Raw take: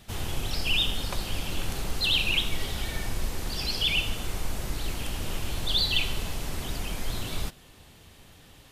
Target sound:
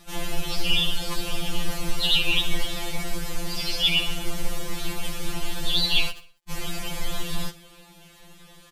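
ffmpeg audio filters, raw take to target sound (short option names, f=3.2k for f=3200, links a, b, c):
-filter_complex "[0:a]asettb=1/sr,asplit=3[a][b][c];[a]atrim=end=6.104[d];[b]atrim=start=6.1:end=6.5,asetpts=PTS-STARTPTS,afade=t=in:d=0.004:c=qsin,afade=t=out:st=0.396:d=0.004:c=qsin,acrusher=bits=2:mix=0:aa=0.5[e];[c]atrim=start=6.496[f];[d][e]acrossfade=d=0.004:c1=hsin:c2=qsin[g];[g][f]acrossfade=d=0.004:c1=qsin:c2=hsin,asplit=2[h][i];[i]aecho=0:1:65|130|195|260:0.1|0.054|0.0292|0.0157[j];[h][j]amix=inputs=2:normalize=0,afftfilt=real='re*2.83*eq(mod(b,8),0)':imag='im*2.83*eq(mod(b,8),0)':win_size=2048:overlap=0.75,volume=5.5dB"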